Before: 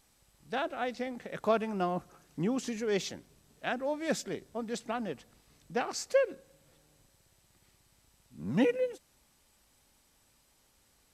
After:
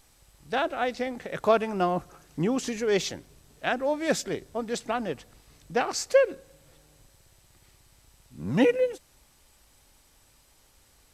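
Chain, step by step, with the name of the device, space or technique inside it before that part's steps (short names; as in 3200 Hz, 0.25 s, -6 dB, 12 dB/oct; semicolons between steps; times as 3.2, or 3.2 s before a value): low shelf boost with a cut just above (low shelf 64 Hz +7 dB; bell 210 Hz -5 dB 0.53 oct); gain +6.5 dB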